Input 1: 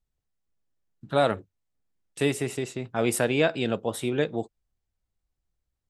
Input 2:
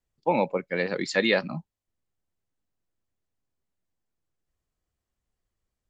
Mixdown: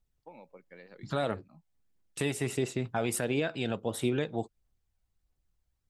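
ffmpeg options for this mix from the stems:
-filter_complex "[0:a]aphaser=in_gain=1:out_gain=1:delay=1.4:decay=0.3:speed=1.5:type=triangular,volume=1dB[a];[1:a]acompressor=threshold=-27dB:ratio=6,volume=-20dB[b];[a][b]amix=inputs=2:normalize=0,alimiter=limit=-18.5dB:level=0:latency=1:release=400"

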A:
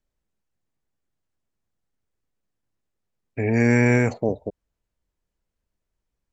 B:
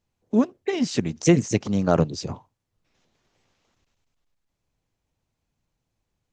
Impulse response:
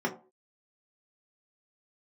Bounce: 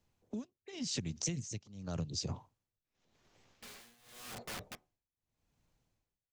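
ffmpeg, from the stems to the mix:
-filter_complex "[0:a]acompressor=threshold=-19dB:ratio=10,aeval=exprs='(mod(31.6*val(0)+1,2)-1)/31.6':c=same,adelay=250,volume=-7dB,asplit=2[a][b];[b]volume=-21.5dB[c];[1:a]volume=1dB,asplit=2[d][e];[e]apad=whole_len=289834[f];[a][f]sidechaincompress=threshold=-34dB:ratio=8:attack=16:release=1360[g];[2:a]atrim=start_sample=2205[h];[c][h]afir=irnorm=-1:irlink=0[i];[g][d][i]amix=inputs=3:normalize=0,acrossover=split=140|3000[j][k][l];[k]acompressor=threshold=-38dB:ratio=3[m];[j][m][l]amix=inputs=3:normalize=0,tremolo=f=0.88:d=0.94,acompressor=threshold=-34dB:ratio=6"

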